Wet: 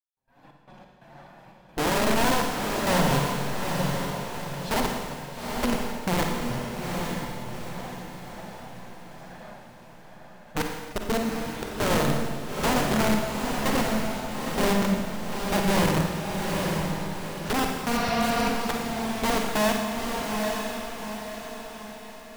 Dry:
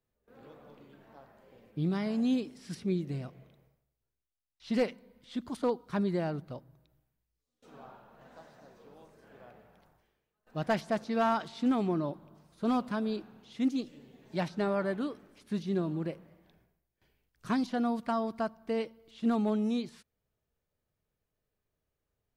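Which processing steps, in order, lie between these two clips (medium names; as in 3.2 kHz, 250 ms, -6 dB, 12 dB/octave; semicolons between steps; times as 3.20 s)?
comb filter that takes the minimum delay 1.2 ms; level rider gain up to 13 dB; overload inside the chain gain 17.5 dB; touch-sensitive flanger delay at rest 7.6 ms, full sweep at -21 dBFS; low-pass that closes with the level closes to 360 Hz, closed at -22.5 dBFS; trance gate ".xx.x.xxx.xxxxx." 89 bpm; de-hum 66.92 Hz, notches 2; integer overflow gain 20 dB; on a send: echo that smears into a reverb 847 ms, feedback 47%, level -3.5 dB; on the sum: spectral replace 17.93–18.46 s, 300–6000 Hz before; Schroeder reverb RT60 1.5 s, DRR 2 dB; trim -1.5 dB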